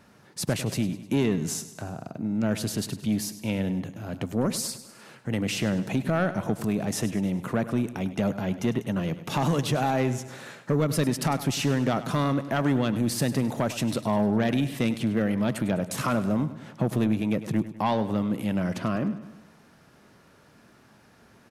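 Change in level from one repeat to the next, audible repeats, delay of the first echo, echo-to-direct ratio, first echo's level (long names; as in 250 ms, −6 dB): −5.5 dB, 4, 101 ms, −12.5 dB, −14.0 dB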